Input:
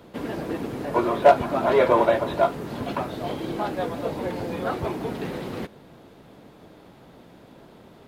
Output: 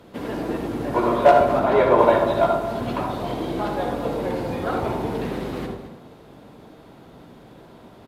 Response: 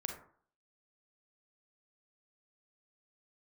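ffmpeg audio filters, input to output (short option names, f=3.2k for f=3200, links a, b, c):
-filter_complex "[0:a]asettb=1/sr,asplit=3[a][b][c];[a]atrim=end=1.594[d];[b]atrim=start=1.59:end=1.99,asetpts=PTS-STARTPTS,afade=t=in:d=0.004:c=qsin,afade=t=out:st=0.396:d=0.004:c=qsin,highshelf=f=3.8k:g=-6.5[e];[c]atrim=start=1.986[f];[d][e]acrossfade=d=0.004:c1=hsin:c2=qsin[g];[g][f]acrossfade=d=0.004:c1=qsin:c2=hsin,aecho=1:1:220:0.2[h];[1:a]atrim=start_sample=2205,asetrate=28224,aresample=44100[i];[h][i]afir=irnorm=-1:irlink=0"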